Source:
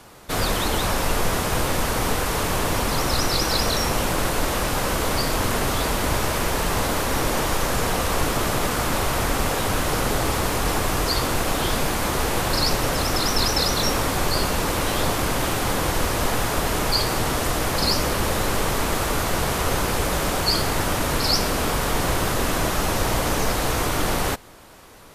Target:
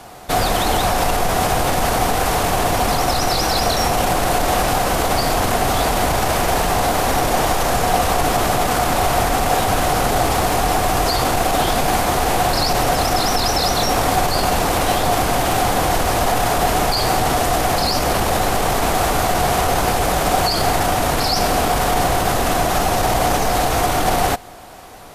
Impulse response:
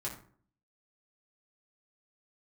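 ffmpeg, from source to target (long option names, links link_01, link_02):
-af "alimiter=limit=-15.5dB:level=0:latency=1:release=24,equalizer=frequency=730:width=5.4:gain=12.5,volume=5.5dB"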